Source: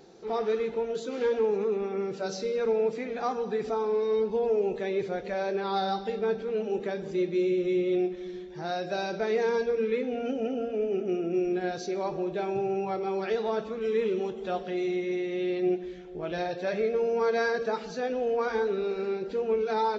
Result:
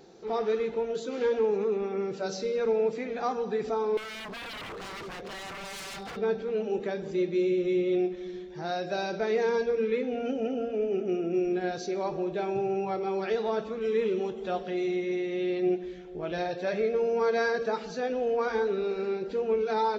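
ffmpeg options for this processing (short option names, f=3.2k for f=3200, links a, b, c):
-filter_complex "[0:a]asettb=1/sr,asplit=3[a][b][c];[a]atrim=end=3.974[d];[b]atrim=start=3.97:end=6.17,asetpts=PTS-STARTPTS,afade=t=in:d=0.004:c=qsin,afade=t=out:st=2.196:d=0.004:c=qsin,aeval=exprs='0.0178*(abs(mod(val(0)/0.0178+3,4)-2)-1)':c=same[e];[c]atrim=start=6.166[f];[d][e]acrossfade=d=0.004:c1=hsin:c2=qsin[g];[g][f]acrossfade=d=0.004:c1=qsin:c2=hsin"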